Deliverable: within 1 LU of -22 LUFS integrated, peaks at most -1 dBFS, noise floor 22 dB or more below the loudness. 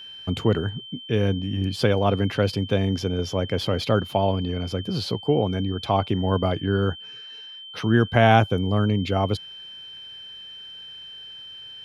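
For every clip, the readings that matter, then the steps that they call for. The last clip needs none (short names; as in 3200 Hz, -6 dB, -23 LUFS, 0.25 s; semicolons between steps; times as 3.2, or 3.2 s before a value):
steady tone 3100 Hz; tone level -38 dBFS; loudness -23.5 LUFS; peak -3.0 dBFS; loudness target -22.0 LUFS
-> notch 3100 Hz, Q 30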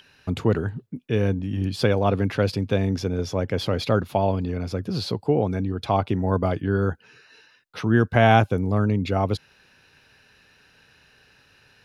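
steady tone none; loudness -23.5 LUFS; peak -3.0 dBFS; loudness target -22.0 LUFS
-> gain +1.5 dB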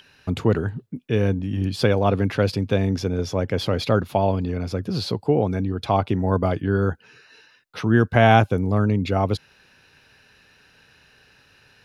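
loudness -22.0 LUFS; peak -1.5 dBFS; noise floor -57 dBFS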